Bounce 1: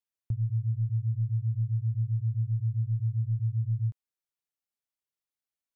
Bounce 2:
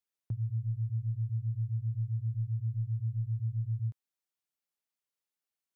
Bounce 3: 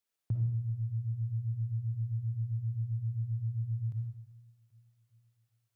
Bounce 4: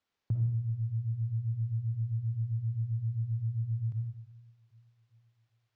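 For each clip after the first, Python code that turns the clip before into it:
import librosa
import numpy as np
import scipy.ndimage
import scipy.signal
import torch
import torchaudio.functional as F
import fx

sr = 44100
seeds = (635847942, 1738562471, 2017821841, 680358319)

y1 = scipy.signal.sosfilt(scipy.signal.butter(2, 130.0, 'highpass', fs=sr, output='sos'), x)
y2 = fx.echo_feedback(y1, sr, ms=391, feedback_pct=50, wet_db=-21.0)
y2 = fx.rev_freeverb(y2, sr, rt60_s=0.85, hf_ratio=0.9, predelay_ms=15, drr_db=1.0)
y2 = y2 * librosa.db_to_amplitude(2.5)
y3 = np.interp(np.arange(len(y2)), np.arange(len(y2))[::4], y2[::4])
y3 = y3 * librosa.db_to_amplitude(1.5)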